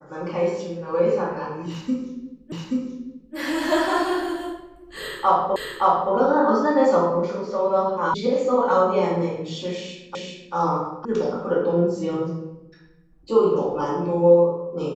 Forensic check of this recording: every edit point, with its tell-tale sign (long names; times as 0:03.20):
0:02.52: the same again, the last 0.83 s
0:05.56: the same again, the last 0.57 s
0:08.14: cut off before it has died away
0:10.15: the same again, the last 0.39 s
0:11.05: cut off before it has died away